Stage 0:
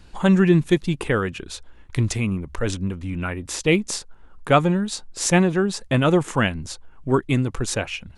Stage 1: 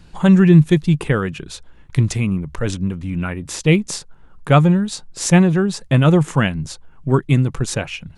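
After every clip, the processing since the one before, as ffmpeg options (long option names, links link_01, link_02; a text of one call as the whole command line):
ffmpeg -i in.wav -af "equalizer=frequency=150:width_type=o:width=0.57:gain=10.5,volume=1dB" out.wav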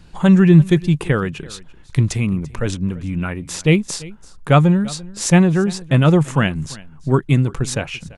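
ffmpeg -i in.wav -af "aecho=1:1:340:0.0891" out.wav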